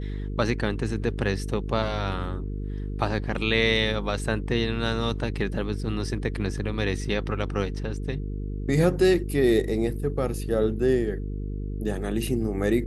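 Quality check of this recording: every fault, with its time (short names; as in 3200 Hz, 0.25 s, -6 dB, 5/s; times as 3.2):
buzz 50 Hz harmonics 9 -31 dBFS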